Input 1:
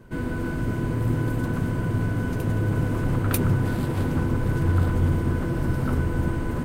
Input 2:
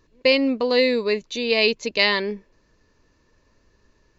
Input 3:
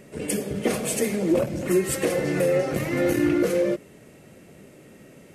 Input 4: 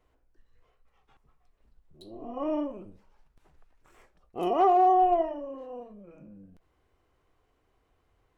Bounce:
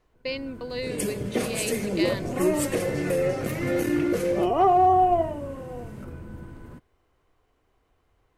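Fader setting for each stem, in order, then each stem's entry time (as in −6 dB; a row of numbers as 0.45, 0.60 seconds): −16.5, −14.0, −3.0, +2.5 decibels; 0.15, 0.00, 0.70, 0.00 seconds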